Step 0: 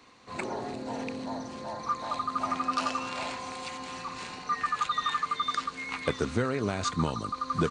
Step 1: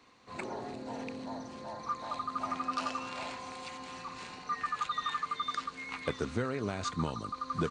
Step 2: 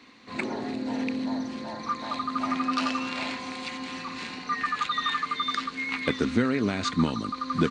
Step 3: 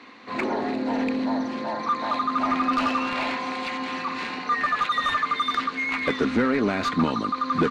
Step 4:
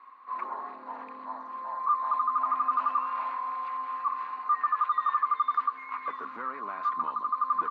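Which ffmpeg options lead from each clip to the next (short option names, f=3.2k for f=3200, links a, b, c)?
-af "highshelf=f=8.8k:g=-4.5,volume=-5dB"
-af "equalizer=f=250:t=o:w=1:g=12,equalizer=f=2k:t=o:w=1:g=8,equalizer=f=4k:t=o:w=1:g=7,volume=2dB"
-filter_complex "[0:a]asplit=2[a][b];[b]highpass=f=720:p=1,volume=19dB,asoftclip=type=tanh:threshold=-10dB[c];[a][c]amix=inputs=2:normalize=0,lowpass=f=1.1k:p=1,volume=-6dB"
-af "bandpass=f=1.1k:t=q:w=10:csg=0,volume=4.5dB"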